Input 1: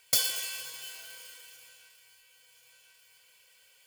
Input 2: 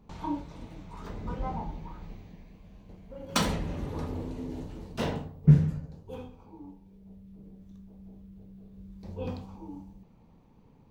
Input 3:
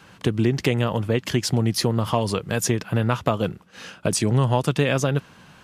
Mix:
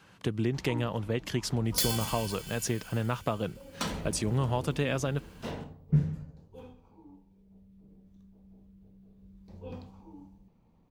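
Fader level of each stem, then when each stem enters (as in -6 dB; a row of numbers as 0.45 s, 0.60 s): -3.5 dB, -7.0 dB, -9.0 dB; 1.65 s, 0.45 s, 0.00 s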